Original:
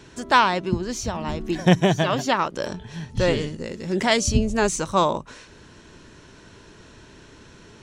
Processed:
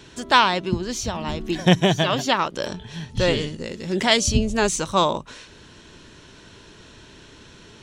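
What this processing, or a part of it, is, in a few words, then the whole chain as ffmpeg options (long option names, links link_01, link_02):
presence and air boost: -af "equalizer=frequency=3400:width_type=o:width=0.84:gain=6,highshelf=frequency=9500:gain=4"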